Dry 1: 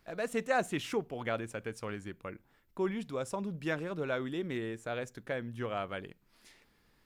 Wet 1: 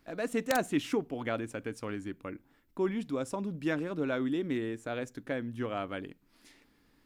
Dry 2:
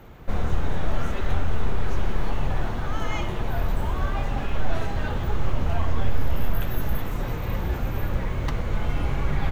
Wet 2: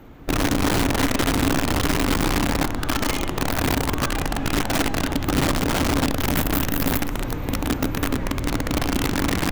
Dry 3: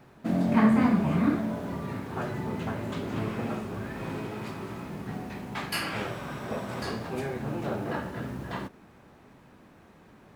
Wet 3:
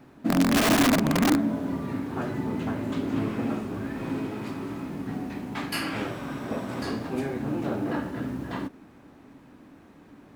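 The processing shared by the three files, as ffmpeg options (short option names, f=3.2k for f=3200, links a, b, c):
-af "aeval=exprs='(mod(7.94*val(0)+1,2)-1)/7.94':c=same,equalizer=f=280:t=o:w=0.38:g=11.5"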